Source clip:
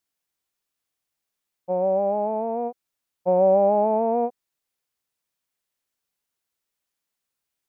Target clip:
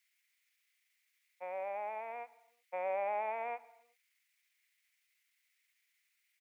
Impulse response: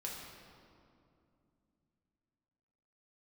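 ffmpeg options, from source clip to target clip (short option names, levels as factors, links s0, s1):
-filter_complex "[0:a]highpass=f=2100:t=q:w=5.8,atempo=1.2,asplit=2[s0][s1];[1:a]atrim=start_sample=2205,afade=t=out:st=0.43:d=0.01,atrim=end_sample=19404[s2];[s1][s2]afir=irnorm=-1:irlink=0,volume=0.2[s3];[s0][s3]amix=inputs=2:normalize=0,volume=1.19"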